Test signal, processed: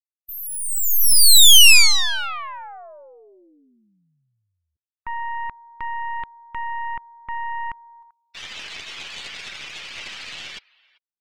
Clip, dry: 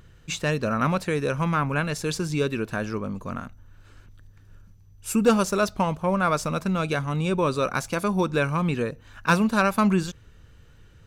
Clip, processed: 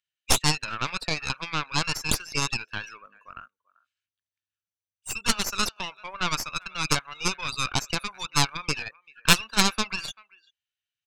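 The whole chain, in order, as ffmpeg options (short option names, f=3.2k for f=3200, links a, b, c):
-filter_complex "[0:a]acrossover=split=6800[a][b];[b]acompressor=threshold=-42dB:ratio=4:attack=1:release=60[c];[a][c]amix=inputs=2:normalize=0,afftdn=nr=34:nf=-37,highpass=f=2.7k:t=q:w=1.6,asplit=2[d][e];[e]adelay=390,highpass=300,lowpass=3.4k,asoftclip=type=hard:threshold=-21.5dB,volume=-23dB[f];[d][f]amix=inputs=2:normalize=0,aeval=exprs='0.266*(cos(1*acos(clip(val(0)/0.266,-1,1)))-cos(1*PI/2))+0.106*(cos(6*acos(clip(val(0)/0.266,-1,1)))-cos(6*PI/2))+0.075*(cos(7*acos(clip(val(0)/0.266,-1,1)))-cos(7*PI/2))':c=same,volume=6.5dB"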